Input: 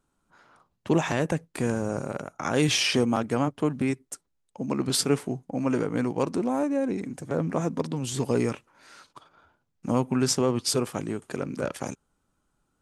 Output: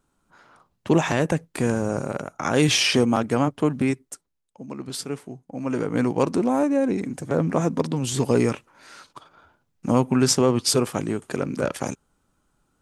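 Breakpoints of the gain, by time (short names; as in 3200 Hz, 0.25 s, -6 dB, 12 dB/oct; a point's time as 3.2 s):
3.88 s +4 dB
4.63 s -7 dB
5.37 s -7 dB
6.02 s +5 dB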